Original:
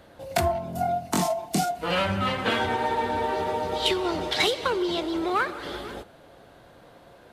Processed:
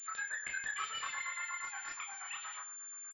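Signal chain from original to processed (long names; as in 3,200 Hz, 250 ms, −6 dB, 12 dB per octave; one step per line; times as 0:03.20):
source passing by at 0:01.92, 12 m/s, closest 7 metres
parametric band 460 Hz +4 dB 2.1 octaves
hum removal 45.67 Hz, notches 10
downward compressor 5 to 1, threshold −44 dBFS, peak gain reduction 22 dB
auto-filter high-pass sine 3.6 Hz 520–1,800 Hz
single-tap delay 222 ms −16 dB
convolution reverb RT60 0.40 s, pre-delay 49 ms, DRR 0 dB
wrong playback speed 33 rpm record played at 78 rpm
switching amplifier with a slow clock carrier 7,200 Hz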